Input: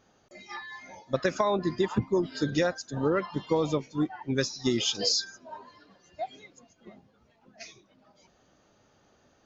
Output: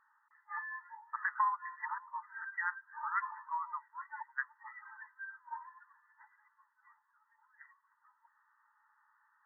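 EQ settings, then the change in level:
linear-phase brick-wall band-pass 840–2,000 Hz
0.0 dB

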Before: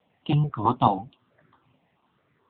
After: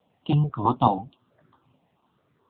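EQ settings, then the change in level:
parametric band 2,000 Hz −8 dB 0.85 octaves
+1.0 dB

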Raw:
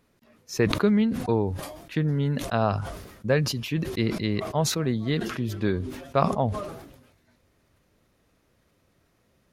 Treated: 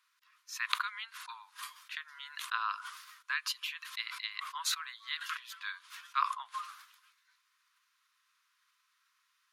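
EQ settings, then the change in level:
high-shelf EQ 11,000 Hz −4.5 dB
dynamic equaliser 5,500 Hz, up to −7 dB, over −52 dBFS, Q 2.2
Chebyshev high-pass with heavy ripple 1,000 Hz, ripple 3 dB
0.0 dB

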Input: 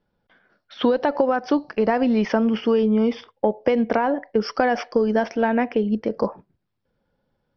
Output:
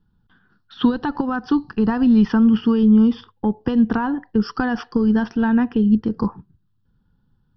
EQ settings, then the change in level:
bass and treble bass +12 dB, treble −2 dB
phaser with its sweep stopped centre 2,200 Hz, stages 6
+1.5 dB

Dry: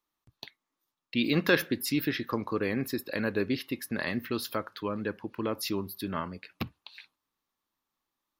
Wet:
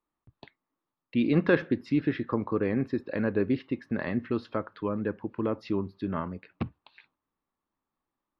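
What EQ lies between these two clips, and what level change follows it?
head-to-tape spacing loss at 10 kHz 44 dB
+4.5 dB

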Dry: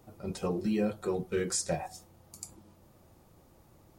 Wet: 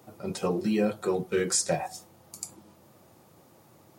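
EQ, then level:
high-pass filter 100 Hz 24 dB per octave
low-shelf EQ 290 Hz −4.5 dB
+6.0 dB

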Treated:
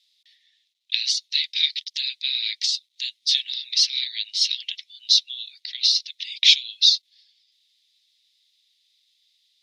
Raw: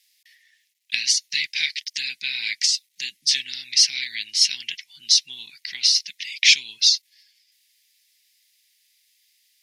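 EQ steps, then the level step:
resonant band-pass 3,900 Hz, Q 0.86
parametric band 3,700 Hz +14 dB 0.56 octaves
−7.5 dB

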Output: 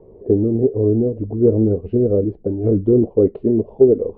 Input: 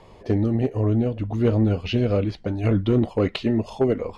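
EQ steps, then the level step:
low-pass with resonance 420 Hz, resonance Q 3.7
0.0 dB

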